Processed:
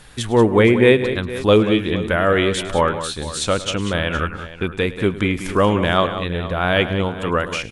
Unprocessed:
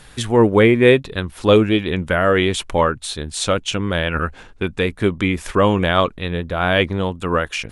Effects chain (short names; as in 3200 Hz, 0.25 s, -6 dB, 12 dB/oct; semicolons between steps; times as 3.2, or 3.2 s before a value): tapped delay 0.105/0.185/0.466 s -17/-11/-15.5 dB; gain -1 dB